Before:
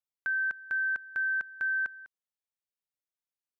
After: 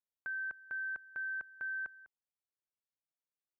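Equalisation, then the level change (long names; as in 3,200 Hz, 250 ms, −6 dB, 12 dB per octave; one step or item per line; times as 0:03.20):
resonant band-pass 250 Hz, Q 0.51
parametric band 240 Hz −7.5 dB 2 octaves
+1.5 dB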